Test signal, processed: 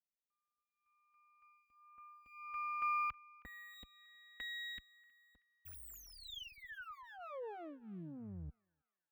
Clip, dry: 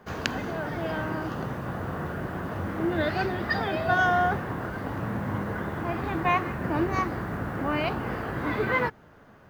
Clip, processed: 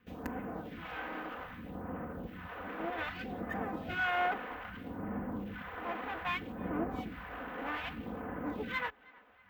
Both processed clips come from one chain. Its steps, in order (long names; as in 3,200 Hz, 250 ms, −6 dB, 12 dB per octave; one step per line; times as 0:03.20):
lower of the sound and its delayed copy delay 4 ms
all-pass phaser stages 2, 0.63 Hz, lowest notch 100–3,900 Hz
high-pass filter 57 Hz 12 dB per octave
flat-topped bell 7,000 Hz −15 dB
on a send: feedback echo with a band-pass in the loop 318 ms, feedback 54%, band-pass 1,700 Hz, level −22.5 dB
on the sum: level −6.5 dB